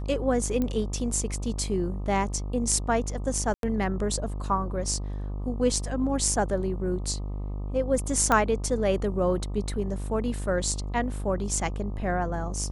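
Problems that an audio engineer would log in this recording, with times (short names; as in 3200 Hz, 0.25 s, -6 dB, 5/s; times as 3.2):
buzz 50 Hz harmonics 25 -32 dBFS
0.62 pop -16 dBFS
3.54–3.63 gap 92 ms
8.32 pop -9 dBFS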